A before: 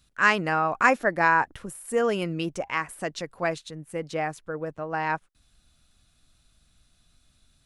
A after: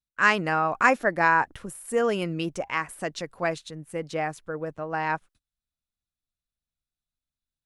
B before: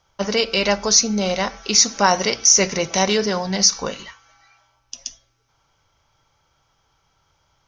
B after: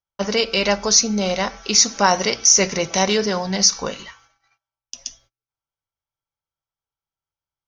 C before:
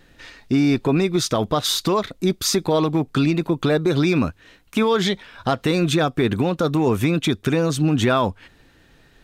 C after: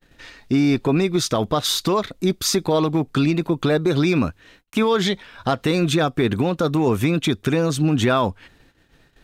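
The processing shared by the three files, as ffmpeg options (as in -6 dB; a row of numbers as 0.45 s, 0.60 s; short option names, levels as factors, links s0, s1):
-af "agate=range=0.0316:threshold=0.00251:ratio=16:detection=peak"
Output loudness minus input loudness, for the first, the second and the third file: 0.0 LU, 0.0 LU, 0.0 LU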